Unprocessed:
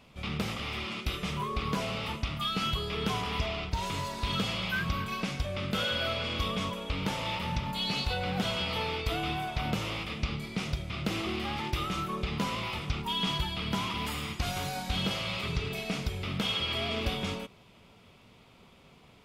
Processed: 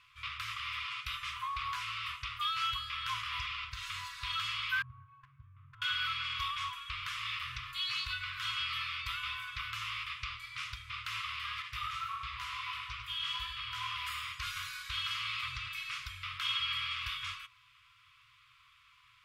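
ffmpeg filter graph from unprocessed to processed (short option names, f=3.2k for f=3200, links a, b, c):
-filter_complex "[0:a]asettb=1/sr,asplit=3[a][b][c];[a]atrim=end=4.824[d];[b]atrim=start=4.82:end=5.82,asetpts=PTS-STARTPTS,afade=t=in:d=0.004:c=qsin,afade=t=out:st=0.996:d=0.004:c=qsin,asuperpass=centerf=210:order=4:qfactor=0.98,volume=28dB,asoftclip=hard,volume=-28dB,acontrast=56[e];[c]atrim=start=5.816[f];[d][e]acrossfade=d=0.004:c1=hsin:c2=qsin[g];[g][f]acrossfade=d=0.004:c1=qsin:c2=hsin,asettb=1/sr,asplit=3[h][i][j];[h]atrim=end=11.624[k];[i]atrim=start=11.62:end=13.96,asetpts=PTS-STARTPTS,afade=t=in:d=0.004:c=qsin,afade=t=out:st=2.336:d=0.004:c=qsin,flanger=delay=15.5:depth=6.4:speed=1.5,asplit=2[l][m];[m]adelay=100,lowpass=f=4.1k:p=1,volume=-5dB,asplit=2[n][o];[o]adelay=100,lowpass=f=4.1k:p=1,volume=0.55,asplit=2[p][q];[q]adelay=100,lowpass=f=4.1k:p=1,volume=0.55,asplit=2[r][s];[s]adelay=100,lowpass=f=4.1k:p=1,volume=0.55,asplit=2[t][u];[u]adelay=100,lowpass=f=4.1k:p=1,volume=0.55,asplit=2[v][w];[w]adelay=100,lowpass=f=4.1k:p=1,volume=0.55,asplit=2[x][y];[y]adelay=100,lowpass=f=4.1k:p=1,volume=0.55[z];[l][n][p][r][t][v][x][z]amix=inputs=8:normalize=0,atrim=end_sample=103194[aa];[j]atrim=start=13.956[ab];[k][aa]acrossfade=d=0.004:c1=hsin:c2=qsin[ac];[ac][ab]acrossfade=d=0.004:c1=qsin:c2=hsin,afftfilt=real='re*(1-between(b*sr/4096,130,1000))':imag='im*(1-between(b*sr/4096,130,1000))':win_size=4096:overlap=0.75,bass=f=250:g=-15,treble=f=4k:g=-7"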